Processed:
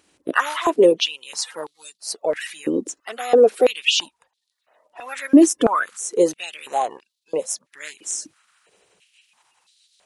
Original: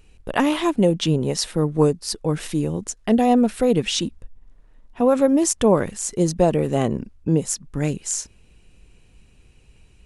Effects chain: bin magnitudes rounded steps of 30 dB; stepped high-pass 3 Hz 300–3900 Hz; gain -1 dB

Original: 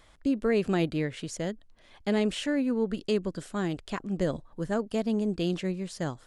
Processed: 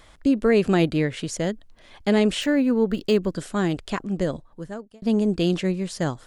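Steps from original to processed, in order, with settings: 2.41–3.32 decimation joined by straight lines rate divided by 2×; 3.85–5.02 fade out; gain +7 dB

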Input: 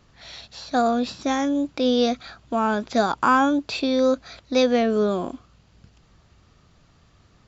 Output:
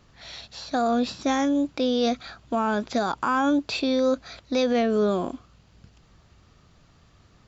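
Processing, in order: limiter -15 dBFS, peak gain reduction 7.5 dB

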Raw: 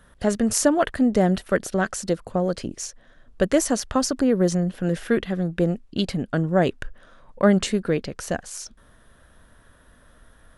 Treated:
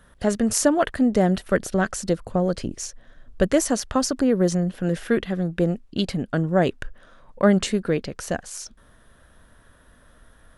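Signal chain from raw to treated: 1.43–3.53 low shelf 130 Hz +6.5 dB

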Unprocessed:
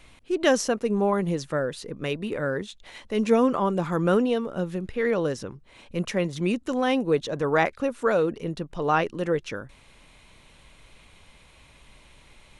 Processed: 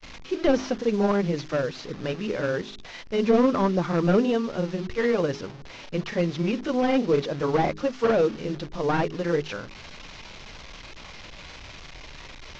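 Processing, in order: delta modulation 32 kbps, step -37 dBFS; grains, spray 26 ms, pitch spread up and down by 0 st; de-hum 51.75 Hz, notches 8; gain +2.5 dB

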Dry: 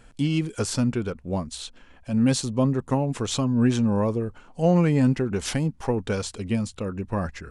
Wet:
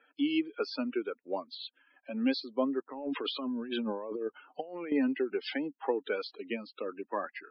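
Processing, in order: per-bin expansion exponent 1.5; Chebyshev band-pass 280–4600 Hz, order 4; 2.9–4.92 negative-ratio compressor -39 dBFS, ratio -1; loudest bins only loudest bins 64; three-band squash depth 40%

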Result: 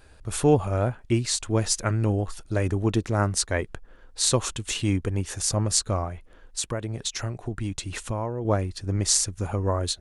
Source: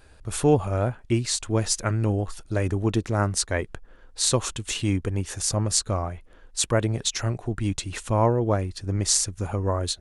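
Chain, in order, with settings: 6.03–8.45 compressor 6:1, threshold -26 dBFS, peak gain reduction 10.5 dB

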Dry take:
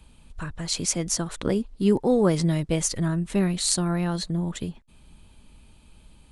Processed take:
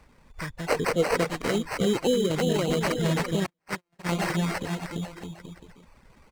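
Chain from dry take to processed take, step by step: bouncing-ball echo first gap 0.34 s, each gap 0.8×, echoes 5; 3.46–4.09 gate -18 dBFS, range -44 dB; limiter -14 dBFS, peak gain reduction 7.5 dB; 2.07–2.3 spectral gain 540–3600 Hz -16 dB; sample-rate reducer 3500 Hz, jitter 0%; 0.68–1.3 bell 460 Hz +13.5 dB 0.39 oct; reverb removal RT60 0.58 s; graphic EQ 125/250/500/1000/2000/4000/8000 Hz +4/+3/+7/+5/+9/+5/+7 dB; gain -6.5 dB

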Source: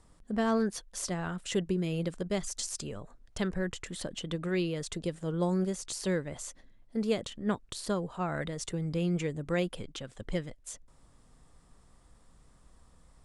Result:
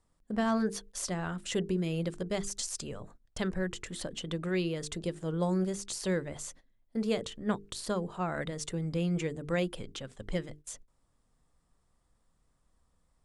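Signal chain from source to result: notches 50/100/150/200/250/300/350/400/450 Hz; gate -50 dBFS, range -12 dB

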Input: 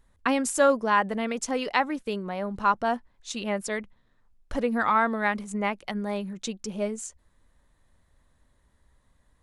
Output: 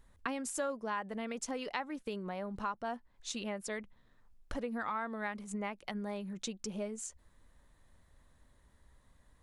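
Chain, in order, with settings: compressor 3:1, threshold -39 dBFS, peak gain reduction 17 dB

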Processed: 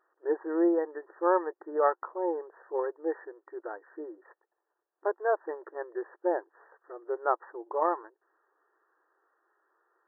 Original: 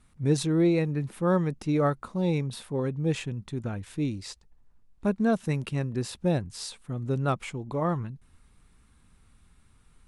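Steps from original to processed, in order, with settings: dynamic EQ 900 Hz, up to +8 dB, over -48 dBFS, Q 3.1; brick-wall FIR band-pass 320–1900 Hz

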